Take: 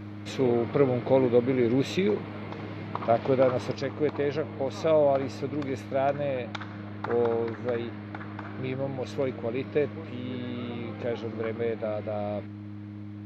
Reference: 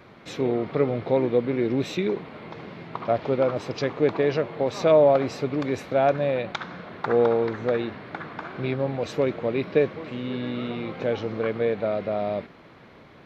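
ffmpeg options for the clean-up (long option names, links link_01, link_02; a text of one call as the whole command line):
ffmpeg -i in.wav -af "bandreject=frequency=103.1:width_type=h:width=4,bandreject=frequency=206.2:width_type=h:width=4,bandreject=frequency=309.3:width_type=h:width=4,asetnsamples=nb_out_samples=441:pad=0,asendcmd='3.75 volume volume 5.5dB',volume=0dB" out.wav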